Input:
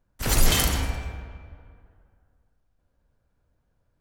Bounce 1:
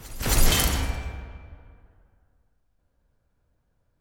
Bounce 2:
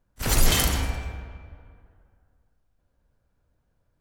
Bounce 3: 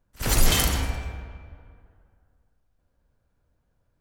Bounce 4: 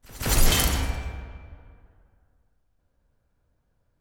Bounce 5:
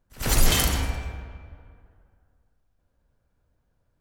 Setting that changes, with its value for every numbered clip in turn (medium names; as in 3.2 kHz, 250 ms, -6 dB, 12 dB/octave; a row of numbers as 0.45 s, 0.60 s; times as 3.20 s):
pre-echo, time: 268 ms, 32 ms, 60 ms, 166 ms, 93 ms